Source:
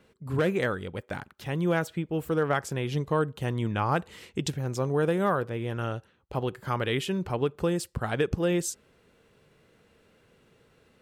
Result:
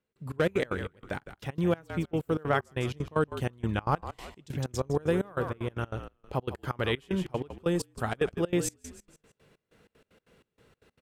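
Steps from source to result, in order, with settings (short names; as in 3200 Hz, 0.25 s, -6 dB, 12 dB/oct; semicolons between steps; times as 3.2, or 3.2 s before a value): frequency-shifting echo 0.159 s, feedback 38%, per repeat -49 Hz, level -12 dB; step gate "..xx.x.x.xx" 190 bpm -24 dB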